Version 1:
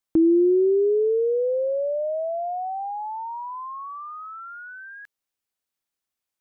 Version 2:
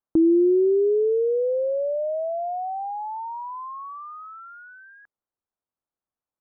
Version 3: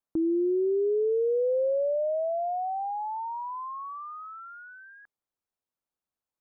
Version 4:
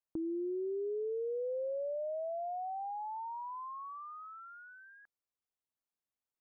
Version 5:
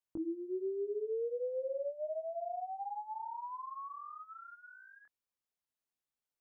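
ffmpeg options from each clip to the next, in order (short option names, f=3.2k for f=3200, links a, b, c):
-af "lowpass=f=1.3k:w=0.5412,lowpass=f=1.3k:w=1.3066"
-af "alimiter=limit=-20.5dB:level=0:latency=1,volume=-1.5dB"
-af "acompressor=threshold=-31dB:ratio=2,volume=-7dB"
-af "flanger=delay=17:depth=7.8:speed=1.3,volume=2dB"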